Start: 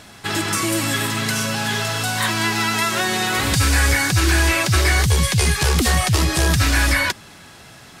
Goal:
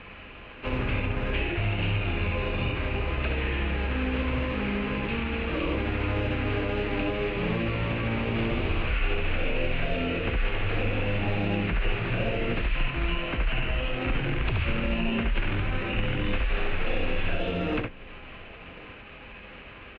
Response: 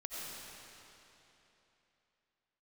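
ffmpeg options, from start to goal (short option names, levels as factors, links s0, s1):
-filter_complex "[0:a]atempo=1.3,flanger=delay=19:depth=3.8:speed=0.36,asetrate=13583,aresample=44100,asplit=2[s0][s1];[s1]acrusher=samples=40:mix=1:aa=0.000001,volume=0.316[s2];[s0][s2]amix=inputs=2:normalize=0,lowpass=f=2600:t=q:w=4.1,acrossover=split=430|1600[s3][s4][s5];[s3]acompressor=threshold=0.0794:ratio=4[s6];[s4]acompressor=threshold=0.0126:ratio=4[s7];[s5]acompressor=threshold=0.0158:ratio=4[s8];[s6][s7][s8]amix=inputs=3:normalize=0,aecho=1:1:1095:0.0708,volume=0.841"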